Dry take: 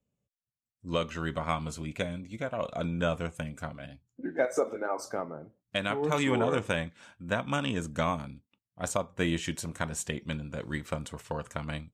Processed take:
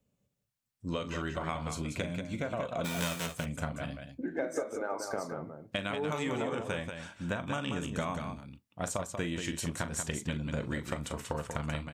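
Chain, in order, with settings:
0:02.84–0:03.25: spectral envelope flattened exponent 0.3
downward compressor, threshold −37 dBFS, peak gain reduction 14.5 dB
on a send: multi-tap delay 40/187 ms −11.5/−6.5 dB
on the sum: level +5 dB

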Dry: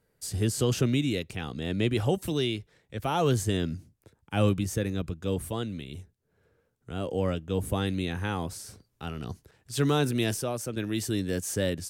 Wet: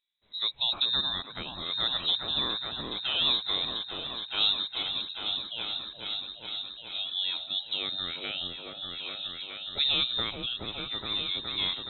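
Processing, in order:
voice inversion scrambler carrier 3,900 Hz
noise reduction from a noise print of the clip's start 12 dB
echo whose low-pass opens from repeat to repeat 420 ms, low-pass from 750 Hz, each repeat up 1 octave, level 0 dB
level −2.5 dB

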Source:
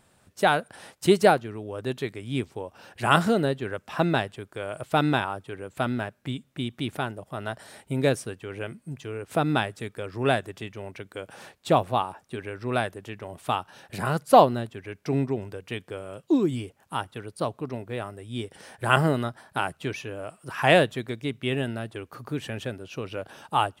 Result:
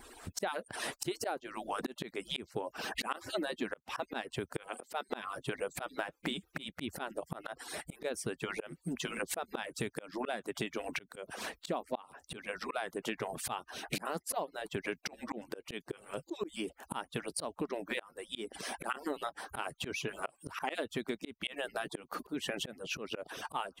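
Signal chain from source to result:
harmonic-percussive split with one part muted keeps percussive
0:04.68–0:05.09: elliptic high-pass filter 210 Hz
volume swells 572 ms
downward compressor 10 to 1, threshold −47 dBFS, peak gain reduction 19.5 dB
level +14 dB

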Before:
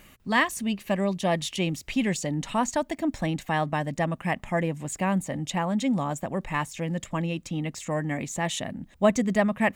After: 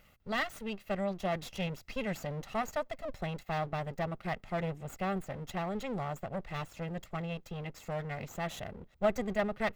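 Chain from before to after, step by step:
lower of the sound and its delayed copy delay 1.5 ms
parametric band 8,900 Hz −8.5 dB 1.3 octaves
level −8 dB

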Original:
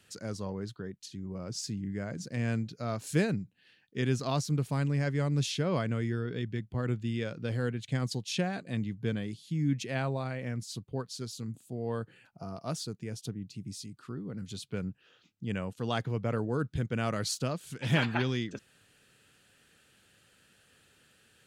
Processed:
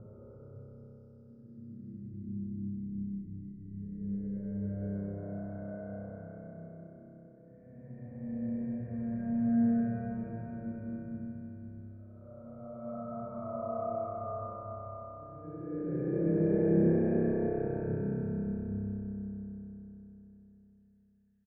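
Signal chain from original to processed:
spectral dynamics exaggerated over time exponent 1.5
low-shelf EQ 160 Hz −9.5 dB
extreme stretch with random phases 9.7×, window 0.25 s, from 0:01.49
low-pass filter 1,100 Hz 24 dB per octave
low-shelf EQ 72 Hz +8.5 dB
on a send: echo with shifted repeats 88 ms, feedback 64%, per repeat −32 Hz, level −16 dB
on the sum: spring reverb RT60 3.9 s, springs 30 ms, chirp 20 ms, DRR −5.5 dB
level −4 dB

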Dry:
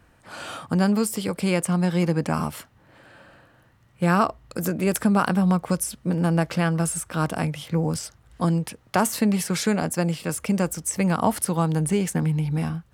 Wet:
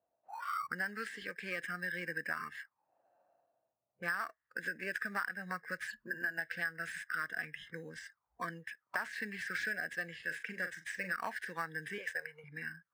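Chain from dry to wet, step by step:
variable-slope delta modulation 64 kbit/s
0:11.98–0:12.44: low shelf with overshoot 360 Hz −13 dB, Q 3
envelope filter 630–1,700 Hz, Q 6.7, up, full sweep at −28 dBFS
in parallel at −12 dB: decimation without filtering 13×
on the sum: noise reduction from a noise print of the clip's start 19 dB
0:05.88–0:06.38: EQ curve with evenly spaced ripples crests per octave 1.4, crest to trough 16 dB
downward compressor 10 to 1, threshold −39 dBFS, peak gain reduction 11.5 dB
0:10.15–0:11.14: double-tracking delay 43 ms −9 dB
one half of a high-frequency compander decoder only
level +6.5 dB

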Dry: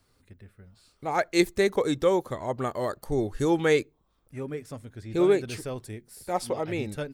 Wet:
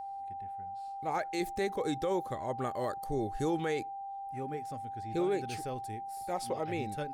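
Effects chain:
brickwall limiter −18.5 dBFS, peak gain reduction 9.5 dB
steady tone 790 Hz −33 dBFS
level −5.5 dB

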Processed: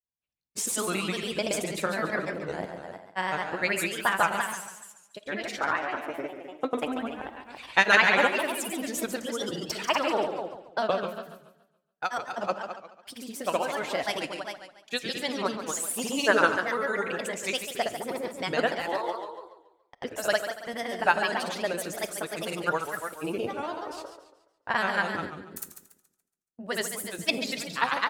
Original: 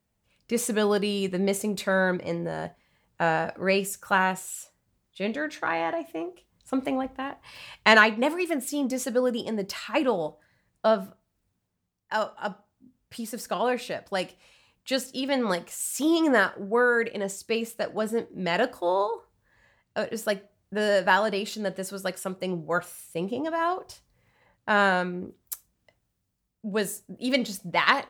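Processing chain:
harmonic and percussive parts rebalanced harmonic −11 dB
noise gate −49 dBFS, range −26 dB
single-tap delay 228 ms −8 dB
granular cloud, pitch spread up and down by 3 semitones
on a send at −17.5 dB: convolution reverb, pre-delay 5 ms
on the sum: feedback echo with a swinging delay time 141 ms, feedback 37%, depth 138 cents, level −9.5 dB
level +3.5 dB

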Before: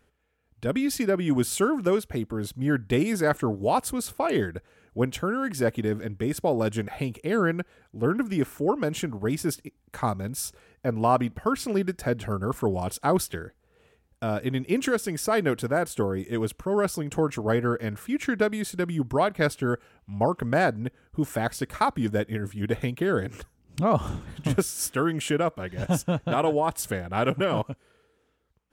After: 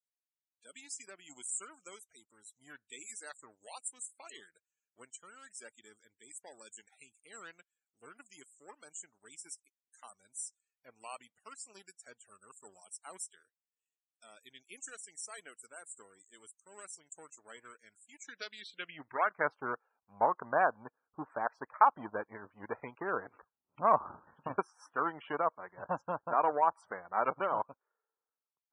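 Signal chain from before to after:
power curve on the samples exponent 1.4
band-pass filter sweep 7,700 Hz → 1,000 Hz, 0:18.18–0:19.48
spectral peaks only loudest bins 64
level +5 dB

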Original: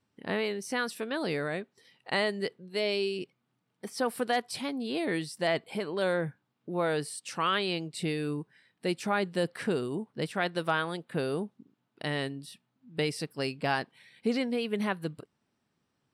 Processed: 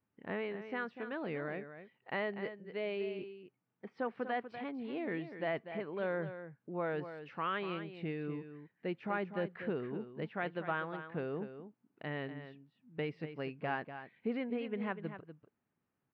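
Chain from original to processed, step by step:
low-pass filter 2,500 Hz 24 dB per octave
single-tap delay 244 ms −10.5 dB
level −7.5 dB

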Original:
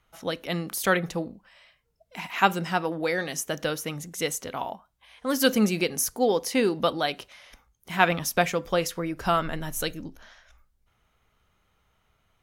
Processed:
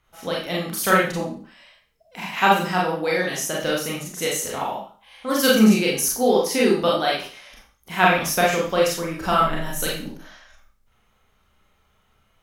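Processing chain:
0:04.32–0:05.27: double-tracking delay 35 ms −5 dB
four-comb reverb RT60 0.42 s, combs from 29 ms, DRR −4 dB

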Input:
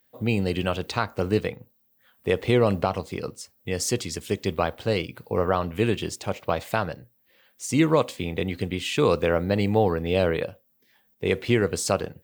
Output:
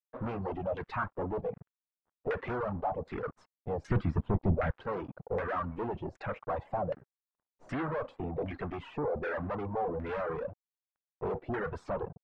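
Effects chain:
spectral magnitudes quantised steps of 15 dB
tube saturation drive 36 dB, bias 0.3
0:03.87–0:04.71: bass and treble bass +13 dB, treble −6 dB
reverb reduction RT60 1 s
dead-zone distortion −54 dBFS
auto-filter low-pass saw down 1.3 Hz 630–1,800 Hz
level +5 dB

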